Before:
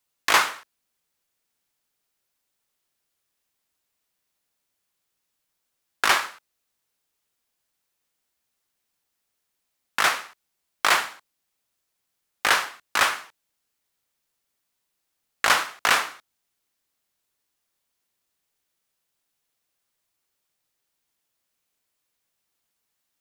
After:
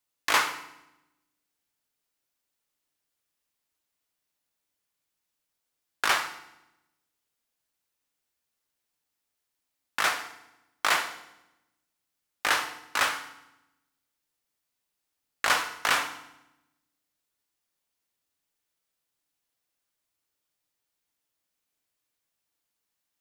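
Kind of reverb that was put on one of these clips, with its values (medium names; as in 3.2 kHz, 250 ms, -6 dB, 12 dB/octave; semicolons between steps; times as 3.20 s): FDN reverb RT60 0.92 s, low-frequency decay 1.4×, high-frequency decay 0.9×, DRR 8.5 dB; trim -5 dB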